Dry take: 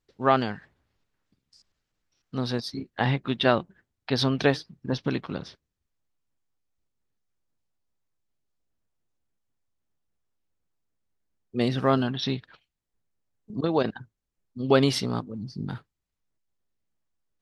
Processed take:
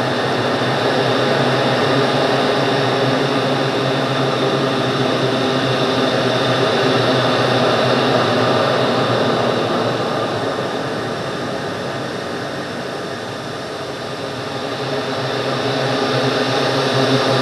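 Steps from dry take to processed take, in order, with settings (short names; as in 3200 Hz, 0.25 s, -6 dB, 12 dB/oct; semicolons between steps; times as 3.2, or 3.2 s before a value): per-bin compression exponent 0.2; Paulstretch 14×, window 0.50 s, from 2.94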